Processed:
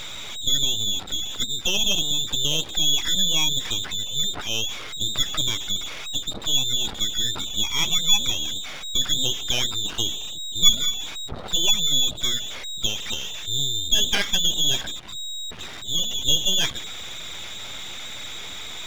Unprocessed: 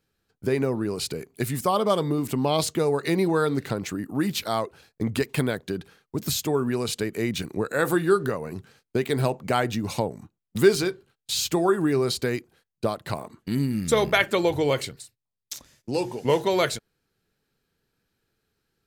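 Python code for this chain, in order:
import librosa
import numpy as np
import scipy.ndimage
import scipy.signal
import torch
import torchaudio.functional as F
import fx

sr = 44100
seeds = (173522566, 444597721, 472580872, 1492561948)

y = x + 0.5 * 10.0 ** (-23.5 / 20.0) * np.sign(x)
y = fx.spec_gate(y, sr, threshold_db=-20, keep='strong')
y = fx.dynamic_eq(y, sr, hz=420.0, q=2.3, threshold_db=-34.0, ratio=4.0, max_db=5)
y = fx.freq_invert(y, sr, carrier_hz=3800)
y = np.maximum(y, 0.0)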